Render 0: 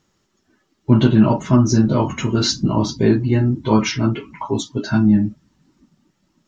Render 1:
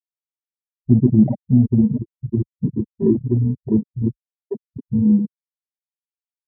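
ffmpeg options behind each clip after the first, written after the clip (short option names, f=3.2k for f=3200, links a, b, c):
-af "aecho=1:1:646|1292|1938:0.158|0.046|0.0133,afftfilt=real='re*gte(hypot(re,im),1)':imag='im*gte(hypot(re,im),1)':win_size=1024:overlap=0.75,afwtdn=0.0891"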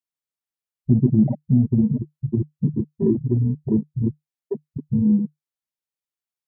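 -filter_complex "[0:a]equalizer=f=150:t=o:w=0.23:g=7.5,asplit=2[a][b];[b]acompressor=threshold=-23dB:ratio=6,volume=2dB[c];[a][c]amix=inputs=2:normalize=0,volume=-6dB"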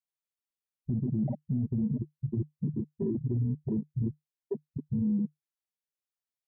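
-af "alimiter=limit=-17dB:level=0:latency=1:release=33,volume=-6dB"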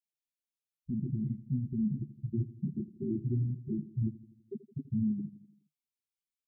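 -af "flanger=delay=4.3:depth=5.4:regen=26:speed=1.1:shape=triangular,asuperstop=centerf=900:order=20:qfactor=0.53,aecho=1:1:83|166|249|332|415:0.15|0.0838|0.0469|0.0263|0.0147"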